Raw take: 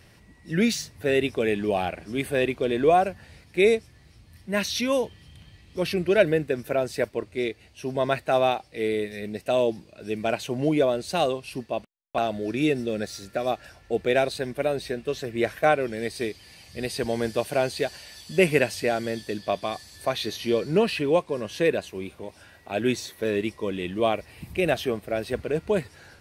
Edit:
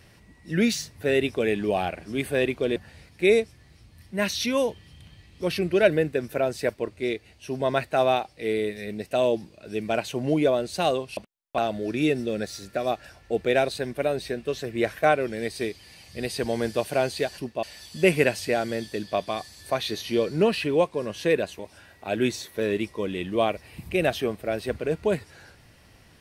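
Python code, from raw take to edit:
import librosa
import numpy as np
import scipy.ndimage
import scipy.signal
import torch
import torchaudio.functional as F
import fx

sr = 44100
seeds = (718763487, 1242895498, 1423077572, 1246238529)

y = fx.edit(x, sr, fx.cut(start_s=2.76, length_s=0.35),
    fx.move(start_s=11.52, length_s=0.25, to_s=17.98),
    fx.cut(start_s=21.94, length_s=0.29), tone=tone)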